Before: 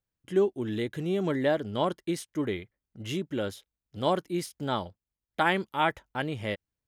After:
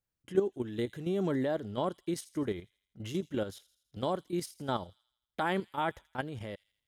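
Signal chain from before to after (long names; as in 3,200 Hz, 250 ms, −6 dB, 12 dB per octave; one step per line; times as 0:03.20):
dynamic equaliser 2,400 Hz, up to −7 dB, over −47 dBFS, Q 1.3
output level in coarse steps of 10 dB
on a send: delay with a high-pass on its return 82 ms, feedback 51%, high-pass 3,600 Hz, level −15.5 dB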